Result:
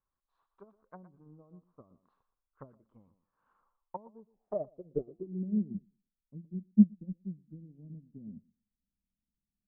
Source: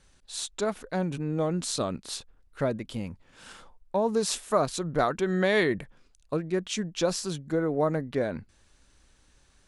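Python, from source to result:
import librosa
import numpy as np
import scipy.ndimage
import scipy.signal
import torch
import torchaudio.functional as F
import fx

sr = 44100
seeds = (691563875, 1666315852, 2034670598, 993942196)

p1 = fx.env_lowpass_down(x, sr, base_hz=370.0, full_db=-25.0)
p2 = fx.dynamic_eq(p1, sr, hz=410.0, q=0.7, threshold_db=-33.0, ratio=4.0, max_db=-3)
p3 = fx.filter_sweep_lowpass(p2, sr, from_hz=1100.0, to_hz=210.0, start_s=4.12, end_s=5.58, q=6.1)
p4 = p3 + fx.echo_thinned(p3, sr, ms=119, feedback_pct=19, hz=160.0, wet_db=-10.5, dry=0)
y = fx.upward_expand(p4, sr, threshold_db=-34.0, expansion=2.5)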